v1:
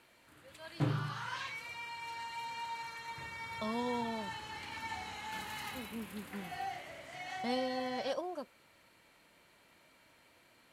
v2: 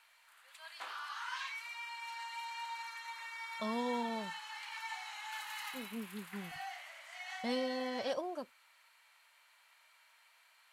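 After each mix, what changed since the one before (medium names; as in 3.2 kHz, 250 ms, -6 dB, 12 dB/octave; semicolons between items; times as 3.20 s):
background: add high-pass 870 Hz 24 dB/octave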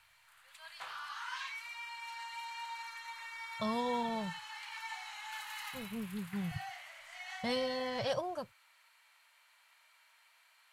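speech +4.0 dB; master: add resonant low shelf 180 Hz +14 dB, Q 3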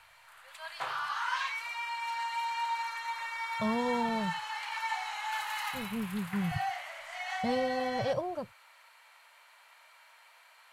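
background +10.5 dB; master: add tilt shelf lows +6 dB, about 1.1 kHz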